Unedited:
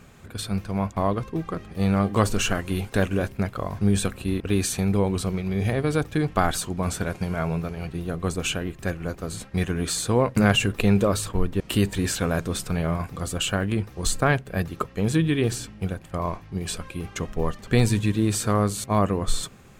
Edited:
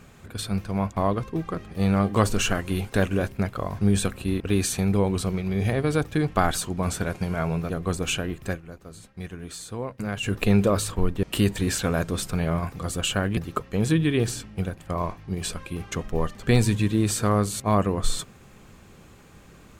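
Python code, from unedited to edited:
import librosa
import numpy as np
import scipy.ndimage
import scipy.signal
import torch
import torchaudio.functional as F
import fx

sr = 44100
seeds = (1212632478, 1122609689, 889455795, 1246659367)

y = fx.edit(x, sr, fx.cut(start_s=7.7, length_s=0.37),
    fx.fade_down_up(start_s=8.85, length_s=1.86, db=-11.5, fade_s=0.14),
    fx.cut(start_s=13.74, length_s=0.87), tone=tone)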